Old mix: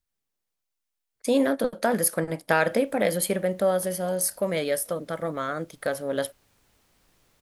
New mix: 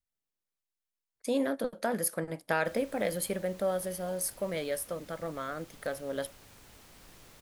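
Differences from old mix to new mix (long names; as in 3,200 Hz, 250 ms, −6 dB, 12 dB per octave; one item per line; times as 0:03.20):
speech −7.5 dB
background +10.0 dB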